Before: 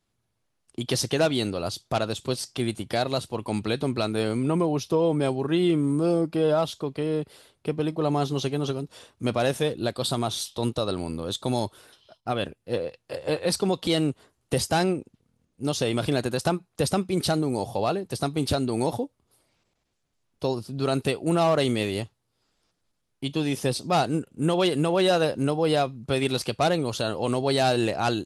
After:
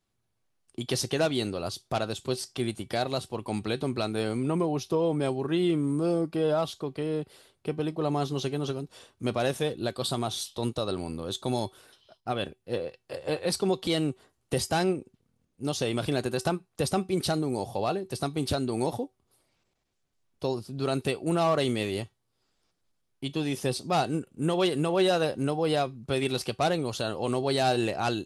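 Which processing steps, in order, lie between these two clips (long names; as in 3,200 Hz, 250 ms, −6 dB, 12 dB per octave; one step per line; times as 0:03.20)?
tuned comb filter 380 Hz, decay 0.2 s, harmonics all, mix 50%
level +2 dB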